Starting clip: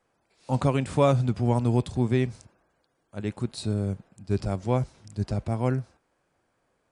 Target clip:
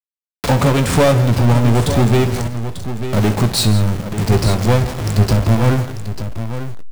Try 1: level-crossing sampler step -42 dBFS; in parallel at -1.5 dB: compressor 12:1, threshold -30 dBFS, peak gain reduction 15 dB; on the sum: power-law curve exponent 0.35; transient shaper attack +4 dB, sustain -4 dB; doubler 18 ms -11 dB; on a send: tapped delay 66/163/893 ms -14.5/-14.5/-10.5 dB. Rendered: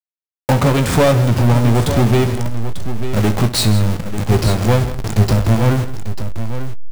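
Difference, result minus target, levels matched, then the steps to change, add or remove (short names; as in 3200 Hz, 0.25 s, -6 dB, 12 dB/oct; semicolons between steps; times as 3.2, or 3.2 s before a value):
level-crossing sampler: distortion +8 dB
change: level-crossing sampler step -49.5 dBFS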